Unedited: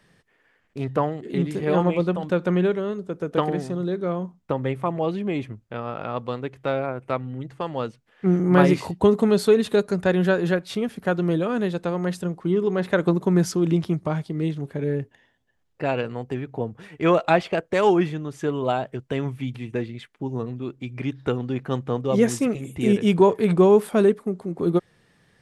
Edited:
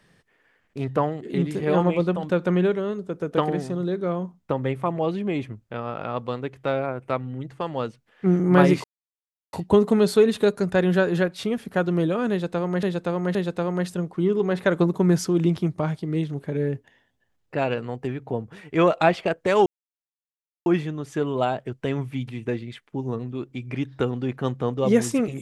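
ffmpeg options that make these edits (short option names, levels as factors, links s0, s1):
-filter_complex "[0:a]asplit=5[s0][s1][s2][s3][s4];[s0]atrim=end=8.84,asetpts=PTS-STARTPTS,afade=t=out:st=8.836:d=0.004:c=hsin,apad=pad_dur=0.69[s5];[s1]atrim=start=8.84:end=12.142,asetpts=PTS-STARTPTS,afade=t=in:d=0.004:c=hsin[s6];[s2]atrim=start=11.618:end=12.142[s7];[s3]atrim=start=11.618:end=17.93,asetpts=PTS-STARTPTS,afade=t=out:st=6.308:d=0.004:c=hsin,apad=pad_dur=1[s8];[s4]atrim=start=17.93,asetpts=PTS-STARTPTS,afade=t=in:d=0.004:c=hsin[s9];[s5][s6]concat=n=2:v=0:a=1[s10];[s10][s7]acrossfade=d=0.004:c1=hsin:c2=hsin[s11];[s8][s9]concat=n=2:v=0:a=1[s12];[s11][s12]acrossfade=d=0.004:c1=hsin:c2=hsin"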